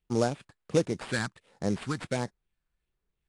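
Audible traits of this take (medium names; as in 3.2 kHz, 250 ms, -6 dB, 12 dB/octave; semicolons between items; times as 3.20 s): phasing stages 4, 1.4 Hz, lowest notch 520–2800 Hz; aliases and images of a low sample rate 6 kHz, jitter 20%; AAC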